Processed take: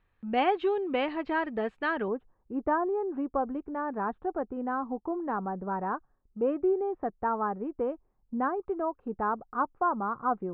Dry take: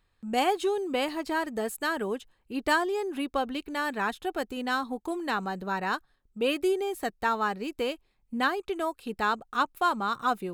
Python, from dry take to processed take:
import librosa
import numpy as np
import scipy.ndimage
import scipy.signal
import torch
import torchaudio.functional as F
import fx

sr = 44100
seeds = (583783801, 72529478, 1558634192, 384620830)

y = fx.lowpass(x, sr, hz=fx.steps((0.0, 2800.0), (2.08, 1200.0)), slope=24)